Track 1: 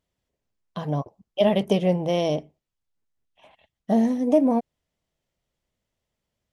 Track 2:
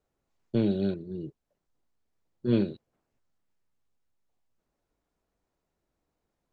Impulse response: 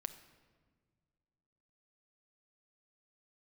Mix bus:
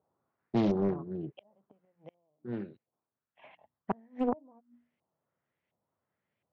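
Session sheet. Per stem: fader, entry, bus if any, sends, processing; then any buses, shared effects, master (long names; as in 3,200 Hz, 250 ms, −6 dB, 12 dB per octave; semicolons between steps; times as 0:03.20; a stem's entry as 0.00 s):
−3.5 dB, 0.00 s, no send, mains-hum notches 60/120/180/240/300 Hz; gate with flip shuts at −16 dBFS, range −35 dB; automatic ducking −17 dB, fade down 0.80 s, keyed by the second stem
0:02.02 −1 dB → 0:02.35 −13 dB, 0.00 s, no send, no processing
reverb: not used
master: high-pass filter 98 Hz 24 dB per octave; auto-filter low-pass saw up 1.4 Hz 830–2,500 Hz; highs frequency-modulated by the lows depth 0.6 ms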